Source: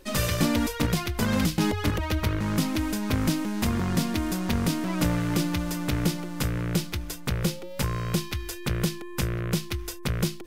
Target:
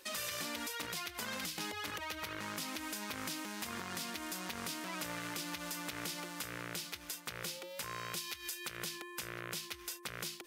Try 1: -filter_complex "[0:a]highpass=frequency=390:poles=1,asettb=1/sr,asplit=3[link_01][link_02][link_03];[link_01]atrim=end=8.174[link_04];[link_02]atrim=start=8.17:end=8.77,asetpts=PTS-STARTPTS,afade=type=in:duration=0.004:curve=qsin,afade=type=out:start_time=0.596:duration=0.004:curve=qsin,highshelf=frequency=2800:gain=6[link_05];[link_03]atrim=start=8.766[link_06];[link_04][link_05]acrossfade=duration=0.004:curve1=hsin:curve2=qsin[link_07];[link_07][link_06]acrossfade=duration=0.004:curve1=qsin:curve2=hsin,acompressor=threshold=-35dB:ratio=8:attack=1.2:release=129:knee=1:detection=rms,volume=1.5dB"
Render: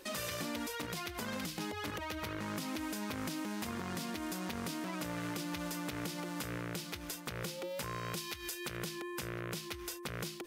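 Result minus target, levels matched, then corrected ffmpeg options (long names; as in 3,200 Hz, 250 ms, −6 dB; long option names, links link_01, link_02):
500 Hz band +4.5 dB
-filter_complex "[0:a]highpass=frequency=1500:poles=1,asettb=1/sr,asplit=3[link_01][link_02][link_03];[link_01]atrim=end=8.174[link_04];[link_02]atrim=start=8.17:end=8.77,asetpts=PTS-STARTPTS,afade=type=in:duration=0.004:curve=qsin,afade=type=out:start_time=0.596:duration=0.004:curve=qsin,highshelf=frequency=2800:gain=6[link_05];[link_03]atrim=start=8.766[link_06];[link_04][link_05]acrossfade=duration=0.004:curve1=hsin:curve2=qsin[link_07];[link_07][link_06]acrossfade=duration=0.004:curve1=qsin:curve2=hsin,acompressor=threshold=-35dB:ratio=8:attack=1.2:release=129:knee=1:detection=rms,volume=1.5dB"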